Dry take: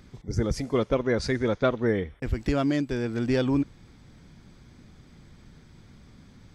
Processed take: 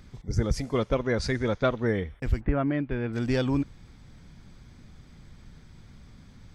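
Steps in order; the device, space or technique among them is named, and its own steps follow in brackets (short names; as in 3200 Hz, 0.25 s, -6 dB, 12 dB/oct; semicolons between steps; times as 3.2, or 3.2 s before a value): low shelf boost with a cut just above (low shelf 61 Hz +6.5 dB; bell 340 Hz -3.5 dB 1.2 oct); 2.39–3.12 LPF 1800 Hz -> 3200 Hz 24 dB/oct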